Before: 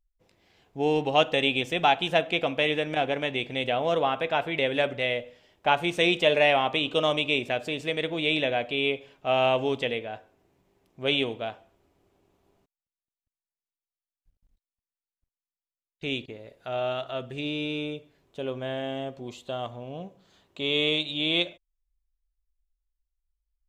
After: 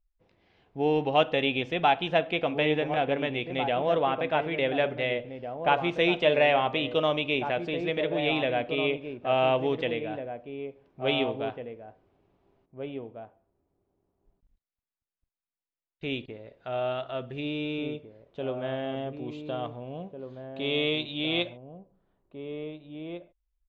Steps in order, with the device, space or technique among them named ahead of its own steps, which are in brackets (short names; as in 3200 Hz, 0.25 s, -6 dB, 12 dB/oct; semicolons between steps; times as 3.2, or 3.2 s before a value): shout across a valley (air absorption 220 m; outdoor echo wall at 300 m, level -7 dB)